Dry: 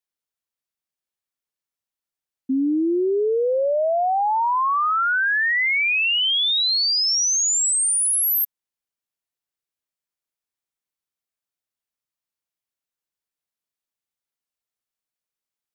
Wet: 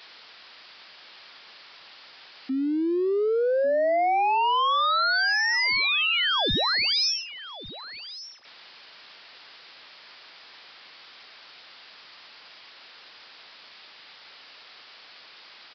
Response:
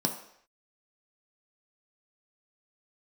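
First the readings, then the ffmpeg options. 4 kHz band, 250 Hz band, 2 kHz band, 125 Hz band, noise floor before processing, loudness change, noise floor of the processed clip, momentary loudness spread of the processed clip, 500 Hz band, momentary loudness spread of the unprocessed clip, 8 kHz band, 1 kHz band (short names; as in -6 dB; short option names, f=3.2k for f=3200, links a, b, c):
-3.5 dB, -4.5 dB, -3.5 dB, n/a, under -85 dBFS, -4.0 dB, -50 dBFS, 17 LU, -2.5 dB, 4 LU, -23.5 dB, -2.0 dB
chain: -af "aeval=exprs='val(0)+0.5*0.0106*sgn(val(0))':c=same,highpass=f=940:p=1,aresample=11025,aeval=exprs='0.15*sin(PI/2*2*val(0)/0.15)':c=same,aresample=44100,aecho=1:1:1147:0.158,volume=-4dB"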